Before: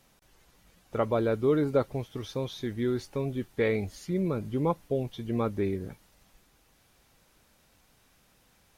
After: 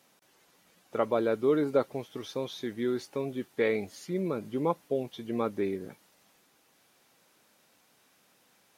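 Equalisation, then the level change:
high-pass filter 220 Hz 12 dB per octave
0.0 dB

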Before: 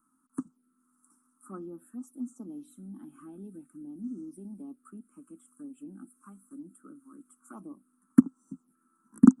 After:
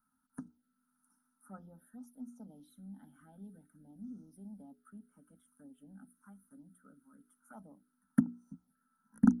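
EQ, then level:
parametric band 74 Hz +10.5 dB 0.22 octaves
mains-hum notches 60/120/180/240/300/360/420 Hz
phaser with its sweep stopped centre 1,700 Hz, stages 8
0.0 dB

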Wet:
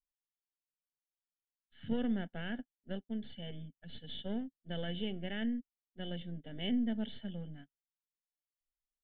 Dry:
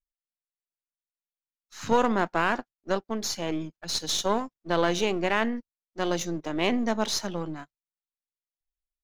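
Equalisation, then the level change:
formant resonators in series i
parametric band 1,700 Hz +11 dB 0.37 octaves
phaser with its sweep stopped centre 1,600 Hz, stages 8
+6.5 dB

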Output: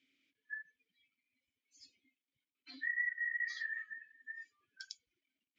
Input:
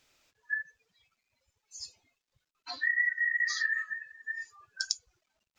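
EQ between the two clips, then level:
dynamic equaliser 1,000 Hz, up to +3 dB, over −42 dBFS, Q 0.75
formant filter i
+5.0 dB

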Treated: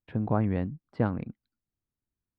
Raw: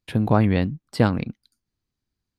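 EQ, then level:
low-pass filter 1,600 Hz 12 dB per octave
−8.0 dB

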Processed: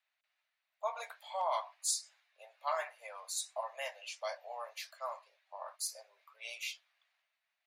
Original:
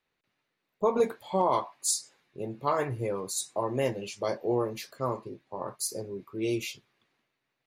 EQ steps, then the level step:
Butterworth high-pass 620 Hz 72 dB per octave
parametric band 920 Hz −9 dB 1.4 octaves
high-shelf EQ 4,600 Hz −9.5 dB
+1.5 dB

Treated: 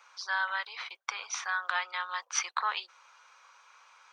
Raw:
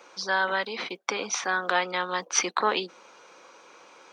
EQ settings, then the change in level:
four-pole ladder high-pass 860 Hz, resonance 30%
0.0 dB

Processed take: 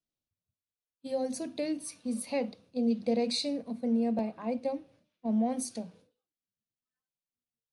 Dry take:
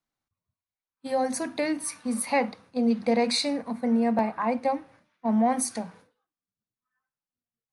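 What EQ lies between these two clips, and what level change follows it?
flat-topped bell 1,300 Hz −12.5 dB
high-shelf EQ 11,000 Hz −11 dB
−4.5 dB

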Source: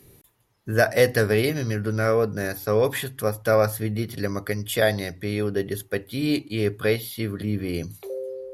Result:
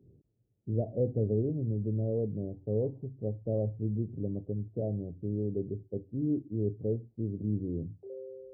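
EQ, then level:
Gaussian smoothing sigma 20 samples
high-pass filter 62 Hz
−3.5 dB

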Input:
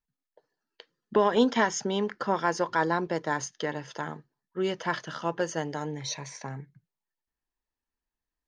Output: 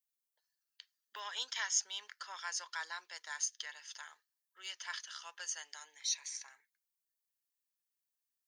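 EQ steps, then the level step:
high-pass filter 1,200 Hz 12 dB per octave
first difference
+3.0 dB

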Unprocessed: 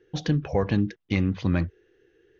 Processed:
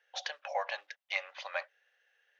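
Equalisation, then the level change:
Chebyshev high-pass with heavy ripple 550 Hz, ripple 3 dB
0.0 dB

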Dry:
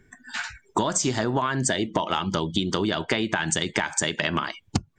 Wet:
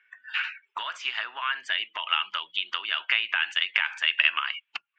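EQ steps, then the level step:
high-pass with resonance 1,300 Hz, resonance Q 2
transistor ladder low-pass 2,900 Hz, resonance 75%
spectral tilt +2 dB per octave
+3.0 dB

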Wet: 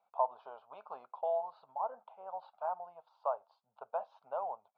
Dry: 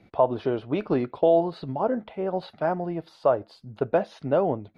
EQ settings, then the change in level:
four-pole ladder band-pass 1,100 Hz, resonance 45%
phaser with its sweep stopped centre 790 Hz, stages 4
+1.5 dB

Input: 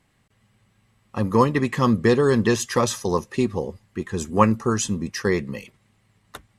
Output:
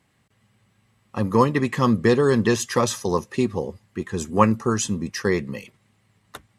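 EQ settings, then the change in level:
high-pass filter 65 Hz
0.0 dB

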